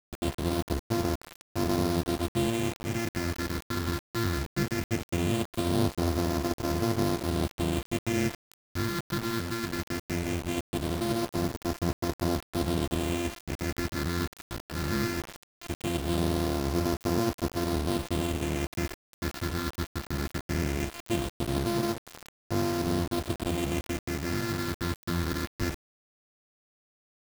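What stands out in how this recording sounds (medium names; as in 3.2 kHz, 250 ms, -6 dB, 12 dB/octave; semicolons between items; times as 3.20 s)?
a buzz of ramps at a fixed pitch in blocks of 128 samples; phasing stages 6, 0.19 Hz, lowest notch 690–2700 Hz; a quantiser's noise floor 6-bit, dither none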